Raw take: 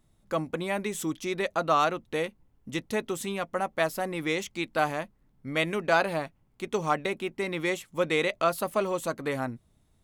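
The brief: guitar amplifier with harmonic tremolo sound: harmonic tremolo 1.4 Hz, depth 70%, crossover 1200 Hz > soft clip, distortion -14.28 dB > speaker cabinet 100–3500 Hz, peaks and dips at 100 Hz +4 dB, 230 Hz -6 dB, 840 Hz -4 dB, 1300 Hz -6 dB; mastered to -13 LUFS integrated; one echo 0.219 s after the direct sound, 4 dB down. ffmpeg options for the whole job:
-filter_complex "[0:a]aecho=1:1:219:0.631,acrossover=split=1200[a][b];[a]aeval=exprs='val(0)*(1-0.7/2+0.7/2*cos(2*PI*1.4*n/s))':c=same[c];[b]aeval=exprs='val(0)*(1-0.7/2-0.7/2*cos(2*PI*1.4*n/s))':c=same[d];[c][d]amix=inputs=2:normalize=0,asoftclip=threshold=-23.5dB,highpass=100,equalizer=f=100:t=q:w=4:g=4,equalizer=f=230:t=q:w=4:g=-6,equalizer=f=840:t=q:w=4:g=-4,equalizer=f=1.3k:t=q:w=4:g=-6,lowpass=f=3.5k:w=0.5412,lowpass=f=3.5k:w=1.3066,volume=22dB"

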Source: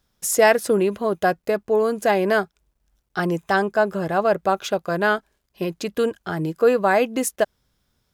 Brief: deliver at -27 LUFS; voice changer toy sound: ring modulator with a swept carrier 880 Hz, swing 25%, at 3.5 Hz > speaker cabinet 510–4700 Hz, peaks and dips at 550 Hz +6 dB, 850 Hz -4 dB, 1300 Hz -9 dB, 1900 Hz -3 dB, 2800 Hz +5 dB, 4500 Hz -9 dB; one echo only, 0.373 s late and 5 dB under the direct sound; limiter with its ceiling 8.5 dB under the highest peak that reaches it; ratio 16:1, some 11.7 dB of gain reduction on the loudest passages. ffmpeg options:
-af "acompressor=threshold=-22dB:ratio=16,alimiter=limit=-20dB:level=0:latency=1,aecho=1:1:373:0.562,aeval=exprs='val(0)*sin(2*PI*880*n/s+880*0.25/3.5*sin(2*PI*3.5*n/s))':c=same,highpass=510,equalizer=f=550:t=q:w=4:g=6,equalizer=f=850:t=q:w=4:g=-4,equalizer=f=1.3k:t=q:w=4:g=-9,equalizer=f=1.9k:t=q:w=4:g=-3,equalizer=f=2.8k:t=q:w=4:g=5,equalizer=f=4.5k:t=q:w=4:g=-9,lowpass=f=4.7k:w=0.5412,lowpass=f=4.7k:w=1.3066,volume=8.5dB"

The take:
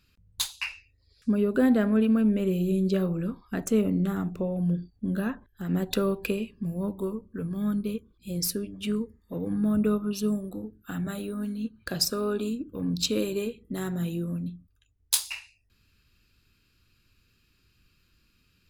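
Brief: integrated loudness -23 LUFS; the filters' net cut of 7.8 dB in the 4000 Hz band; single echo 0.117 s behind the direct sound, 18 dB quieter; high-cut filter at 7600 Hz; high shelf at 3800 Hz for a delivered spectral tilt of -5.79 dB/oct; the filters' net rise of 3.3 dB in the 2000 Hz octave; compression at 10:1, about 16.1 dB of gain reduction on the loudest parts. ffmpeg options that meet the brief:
-af "lowpass=7.6k,equalizer=f=2k:t=o:g=8.5,highshelf=f=3.8k:g=-6,equalizer=f=4k:t=o:g=-8,acompressor=threshold=-35dB:ratio=10,aecho=1:1:117:0.126,volume=16.5dB"

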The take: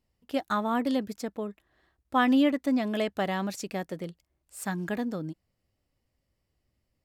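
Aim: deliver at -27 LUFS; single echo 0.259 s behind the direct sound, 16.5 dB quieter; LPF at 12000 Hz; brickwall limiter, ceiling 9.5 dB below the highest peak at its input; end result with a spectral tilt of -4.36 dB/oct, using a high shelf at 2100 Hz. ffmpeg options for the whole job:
-af "lowpass=12k,highshelf=f=2.1k:g=6.5,alimiter=limit=-19.5dB:level=0:latency=1,aecho=1:1:259:0.15,volume=4dB"

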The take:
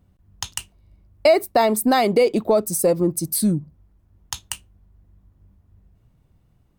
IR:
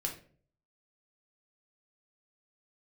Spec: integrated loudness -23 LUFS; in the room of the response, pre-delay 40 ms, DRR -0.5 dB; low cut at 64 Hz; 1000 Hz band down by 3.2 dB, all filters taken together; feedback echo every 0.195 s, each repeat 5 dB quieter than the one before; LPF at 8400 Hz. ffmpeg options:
-filter_complex "[0:a]highpass=64,lowpass=8.4k,equalizer=f=1k:t=o:g=-5,aecho=1:1:195|390|585|780|975|1170|1365:0.562|0.315|0.176|0.0988|0.0553|0.031|0.0173,asplit=2[a][b];[1:a]atrim=start_sample=2205,adelay=40[c];[b][c]afir=irnorm=-1:irlink=0,volume=-1dB[d];[a][d]amix=inputs=2:normalize=0,volume=-6.5dB"

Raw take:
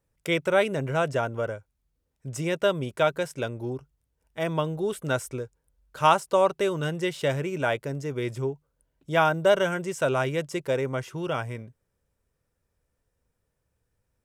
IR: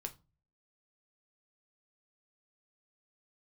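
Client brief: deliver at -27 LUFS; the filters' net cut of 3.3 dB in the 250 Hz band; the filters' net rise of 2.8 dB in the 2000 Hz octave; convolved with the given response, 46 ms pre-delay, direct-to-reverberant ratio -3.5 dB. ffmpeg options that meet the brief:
-filter_complex "[0:a]equalizer=f=250:t=o:g=-6,equalizer=f=2k:t=o:g=4,asplit=2[a][b];[1:a]atrim=start_sample=2205,adelay=46[c];[b][c]afir=irnorm=-1:irlink=0,volume=6dB[d];[a][d]amix=inputs=2:normalize=0,volume=-5.5dB"

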